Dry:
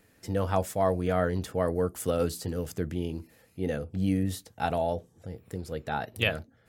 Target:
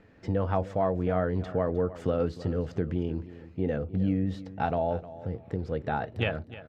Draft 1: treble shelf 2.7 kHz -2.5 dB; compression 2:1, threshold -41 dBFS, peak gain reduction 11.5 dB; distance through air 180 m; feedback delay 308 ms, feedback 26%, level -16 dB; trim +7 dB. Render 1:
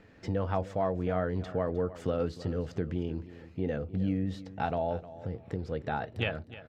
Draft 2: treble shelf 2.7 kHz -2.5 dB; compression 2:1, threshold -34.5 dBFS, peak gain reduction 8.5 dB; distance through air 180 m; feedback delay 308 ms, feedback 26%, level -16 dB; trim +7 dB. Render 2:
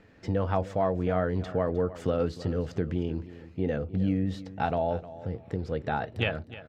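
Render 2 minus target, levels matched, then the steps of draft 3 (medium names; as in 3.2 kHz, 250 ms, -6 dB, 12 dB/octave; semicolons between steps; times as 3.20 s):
4 kHz band +3.0 dB
treble shelf 2.7 kHz -8.5 dB; compression 2:1, threshold -34.5 dBFS, peak gain reduction 8 dB; distance through air 180 m; feedback delay 308 ms, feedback 26%, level -16 dB; trim +7 dB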